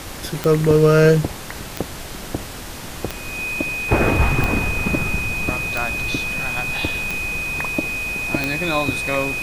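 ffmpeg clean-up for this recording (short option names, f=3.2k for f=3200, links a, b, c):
-af "adeclick=t=4,bandreject=f=2.5k:w=30,afftdn=nr=30:nf=-32"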